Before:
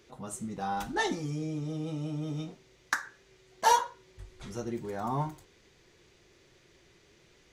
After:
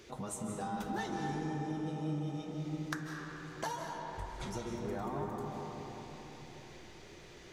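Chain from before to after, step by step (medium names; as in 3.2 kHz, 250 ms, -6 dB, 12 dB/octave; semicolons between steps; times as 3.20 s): compression 10:1, threshold -43 dBFS, peak gain reduction 23.5 dB; reverberation RT60 4.5 s, pre-delay 115 ms, DRR 0 dB; trim +5 dB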